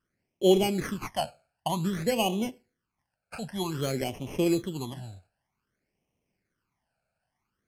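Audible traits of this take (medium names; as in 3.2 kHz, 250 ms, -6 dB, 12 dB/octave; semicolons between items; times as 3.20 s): aliases and images of a low sample rate 3.7 kHz, jitter 0%; phasing stages 12, 0.53 Hz, lowest notch 330–1500 Hz; Vorbis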